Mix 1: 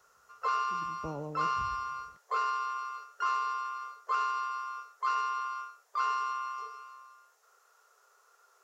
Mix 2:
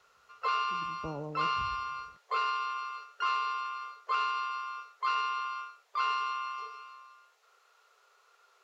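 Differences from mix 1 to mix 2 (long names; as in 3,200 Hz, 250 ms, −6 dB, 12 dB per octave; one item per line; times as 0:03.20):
background: add flat-topped bell 3,100 Hz +9 dB 1.3 octaves
master: add high-shelf EQ 6,000 Hz −8.5 dB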